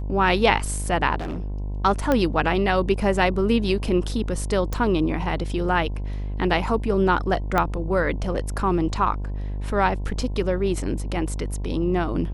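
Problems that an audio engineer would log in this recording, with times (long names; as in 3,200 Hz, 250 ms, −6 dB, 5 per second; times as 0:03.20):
mains buzz 50 Hz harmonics 21 −28 dBFS
0:01.18–0:01.60: clipping −26 dBFS
0:02.12: click −9 dBFS
0:04.73: click
0:07.58: click −8 dBFS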